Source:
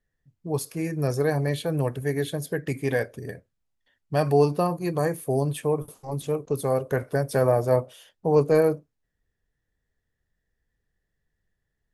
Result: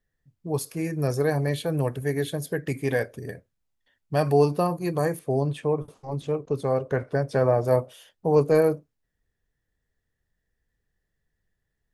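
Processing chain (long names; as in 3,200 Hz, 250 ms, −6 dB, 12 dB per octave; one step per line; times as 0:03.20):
0:05.19–0:07.65: high-frequency loss of the air 94 metres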